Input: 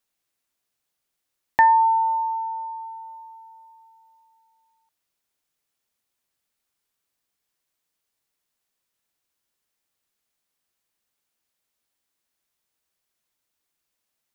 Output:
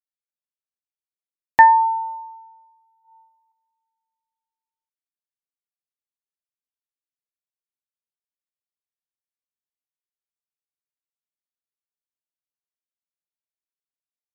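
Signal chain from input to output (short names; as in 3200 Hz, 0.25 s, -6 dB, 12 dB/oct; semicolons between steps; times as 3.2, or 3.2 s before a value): 3.01–3.52 flutter echo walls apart 5.9 m, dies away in 1.2 s; upward expander 2.5:1, over -35 dBFS; gain +7 dB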